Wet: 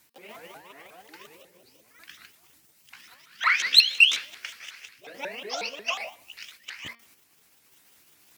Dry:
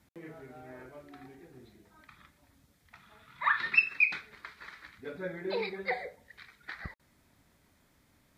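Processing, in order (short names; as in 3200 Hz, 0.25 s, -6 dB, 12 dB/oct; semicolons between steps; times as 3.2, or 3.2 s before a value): repeated pitch sweeps +8.5 st, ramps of 0.181 s; tilt +3.5 dB/oct; de-hum 232.6 Hz, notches 24; in parallel at -5 dB: soft clip -18.5 dBFS, distortion -8 dB; on the sum: random-step tremolo; gain +2.5 dB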